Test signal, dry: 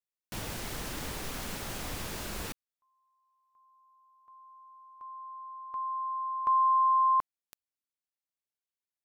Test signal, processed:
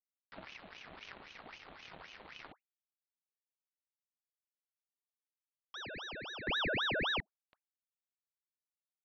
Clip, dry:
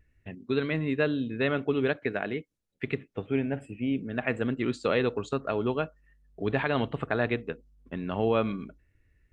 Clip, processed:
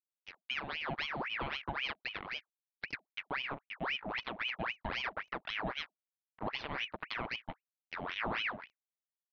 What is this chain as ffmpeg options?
ffmpeg -i in.wav -af "highpass=74,aeval=exprs='sgn(val(0))*max(abs(val(0))-0.0126,0)':channel_layout=same,equalizer=frequency=220:width_type=o:width=0.23:gain=11.5,acompressor=threshold=-29dB:ratio=3:attack=1:release=482:knee=1:detection=peak,highshelf=frequency=3000:gain=-8.5,aresample=8000,aresample=44100,aeval=exprs='val(0)*sin(2*PI*1600*n/s+1600*0.75/3.8*sin(2*PI*3.8*n/s))':channel_layout=same" out.wav

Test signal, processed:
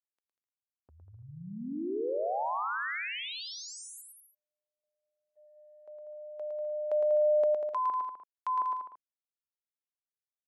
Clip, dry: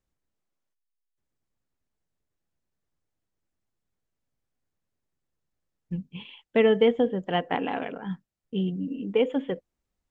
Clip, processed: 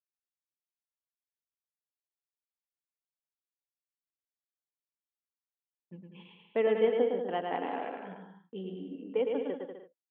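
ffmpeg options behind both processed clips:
ffmpeg -i in.wav -af "lowpass=frequency=1200:poles=1,agate=range=-21dB:threshold=-52dB:ratio=16:detection=peak,highpass=350,aecho=1:1:110|192.5|254.4|300.8|335.6:0.631|0.398|0.251|0.158|0.1,volume=-5dB" out.wav

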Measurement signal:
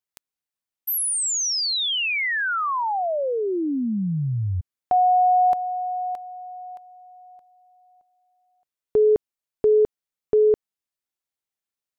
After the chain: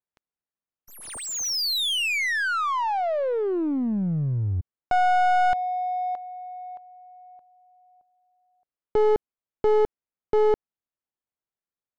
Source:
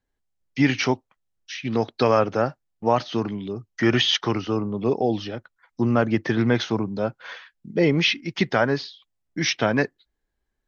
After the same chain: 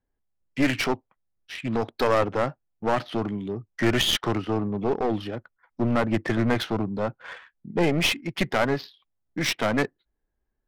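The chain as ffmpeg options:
ffmpeg -i in.wav -af "aeval=exprs='clip(val(0),-1,0.0668)':channel_layout=same,adynamicsmooth=sensitivity=4:basefreq=1900" out.wav

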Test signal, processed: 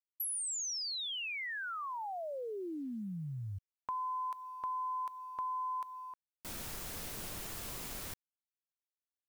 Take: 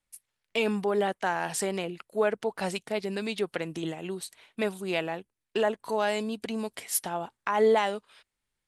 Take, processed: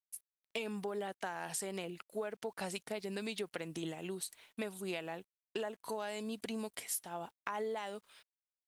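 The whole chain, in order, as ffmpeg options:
ffmpeg -i in.wav -af "crystalizer=i=1:c=0,acompressor=threshold=-29dB:ratio=20,acrusher=bits=10:mix=0:aa=0.000001,volume=-6dB" out.wav

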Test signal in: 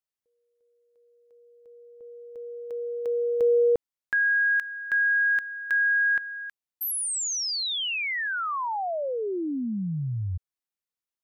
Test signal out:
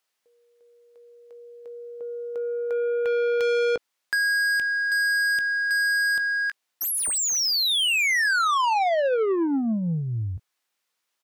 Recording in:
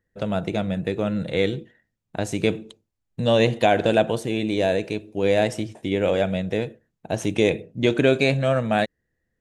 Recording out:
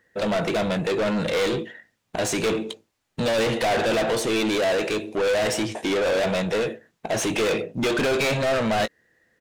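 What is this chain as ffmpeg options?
ffmpeg -i in.wav -filter_complex "[0:a]asplit=2[link_01][link_02];[link_02]highpass=frequency=720:poles=1,volume=32dB,asoftclip=type=tanh:threshold=-4.5dB[link_03];[link_01][link_03]amix=inputs=2:normalize=0,lowpass=frequency=5100:poles=1,volume=-6dB,asplit=2[link_04][link_05];[link_05]adelay=18,volume=-13dB[link_06];[link_04][link_06]amix=inputs=2:normalize=0,asoftclip=type=tanh:threshold=-10dB,volume=-8dB" out.wav

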